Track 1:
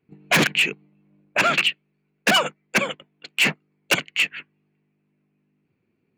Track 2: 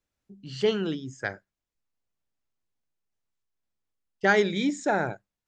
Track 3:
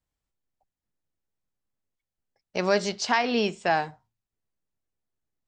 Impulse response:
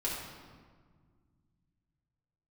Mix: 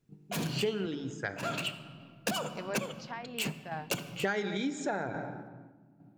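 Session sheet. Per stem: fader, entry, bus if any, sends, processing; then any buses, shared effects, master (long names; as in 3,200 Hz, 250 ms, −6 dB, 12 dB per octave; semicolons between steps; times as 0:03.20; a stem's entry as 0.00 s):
−5.0 dB, 0.00 s, send −14.5 dB, no echo send, graphic EQ with 10 bands 125 Hz +11 dB, 2,000 Hz −12 dB, 16,000 Hz +6 dB; automatic ducking −13 dB, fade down 0.35 s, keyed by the second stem
+2.5 dB, 0.00 s, send −14.5 dB, echo send −18 dB, no processing
−14.0 dB, 0.00 s, no send, no echo send, treble cut that deepens with the level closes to 2,600 Hz, closed at −22 dBFS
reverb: on, RT60 1.7 s, pre-delay 4 ms
echo: single-tap delay 180 ms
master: sample-and-hold tremolo; downward compressor 6 to 1, threshold −29 dBFS, peak gain reduction 14.5 dB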